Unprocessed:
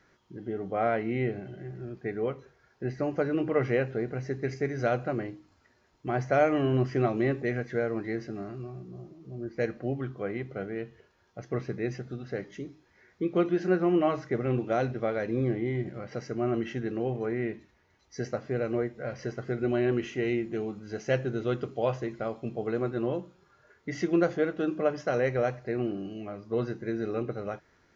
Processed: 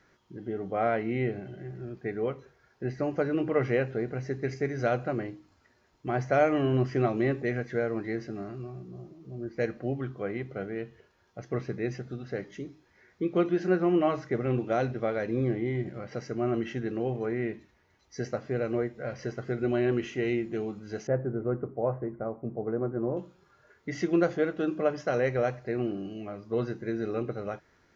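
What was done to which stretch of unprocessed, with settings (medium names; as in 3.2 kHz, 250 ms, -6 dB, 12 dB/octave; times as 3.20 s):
21.07–23.17 s: Bessel low-pass 1 kHz, order 8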